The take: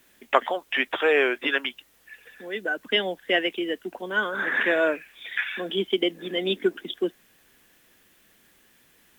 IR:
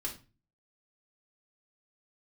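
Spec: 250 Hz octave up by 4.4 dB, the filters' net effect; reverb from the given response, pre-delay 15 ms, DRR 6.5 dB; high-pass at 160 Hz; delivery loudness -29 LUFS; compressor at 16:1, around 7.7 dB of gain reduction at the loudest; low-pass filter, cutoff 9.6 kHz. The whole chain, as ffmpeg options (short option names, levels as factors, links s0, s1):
-filter_complex "[0:a]highpass=160,lowpass=9600,equalizer=f=250:t=o:g=8,acompressor=threshold=0.0891:ratio=16,asplit=2[s0][s1];[1:a]atrim=start_sample=2205,adelay=15[s2];[s1][s2]afir=irnorm=-1:irlink=0,volume=0.447[s3];[s0][s3]amix=inputs=2:normalize=0,volume=0.75"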